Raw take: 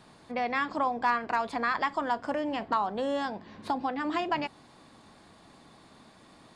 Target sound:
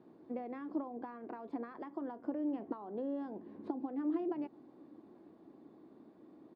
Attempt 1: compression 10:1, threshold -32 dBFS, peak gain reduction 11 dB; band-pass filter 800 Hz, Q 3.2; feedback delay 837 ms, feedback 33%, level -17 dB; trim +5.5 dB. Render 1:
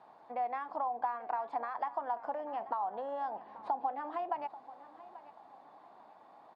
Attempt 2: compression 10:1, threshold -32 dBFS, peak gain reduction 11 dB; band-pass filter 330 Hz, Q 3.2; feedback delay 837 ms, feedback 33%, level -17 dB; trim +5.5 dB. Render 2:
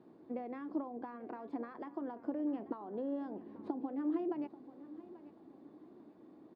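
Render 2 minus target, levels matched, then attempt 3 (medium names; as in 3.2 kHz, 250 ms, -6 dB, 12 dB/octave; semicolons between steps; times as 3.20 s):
echo-to-direct +12 dB
compression 10:1, threshold -32 dBFS, peak gain reduction 11 dB; band-pass filter 330 Hz, Q 3.2; feedback delay 837 ms, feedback 33%, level -29 dB; trim +5.5 dB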